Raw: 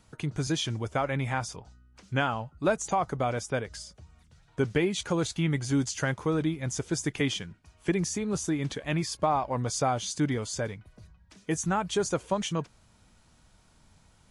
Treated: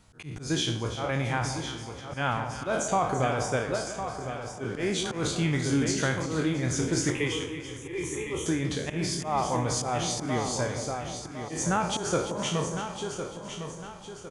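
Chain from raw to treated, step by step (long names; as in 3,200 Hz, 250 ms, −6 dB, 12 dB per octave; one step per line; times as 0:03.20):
peak hold with a decay on every bin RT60 0.50 s
repeating echo 1,057 ms, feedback 38%, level −9 dB
volume swells 140 ms
0:07.10–0:08.46: phaser with its sweep stopped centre 990 Hz, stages 8
on a send: delay that swaps between a low-pass and a high-pass 168 ms, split 1,000 Hz, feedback 68%, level −8.5 dB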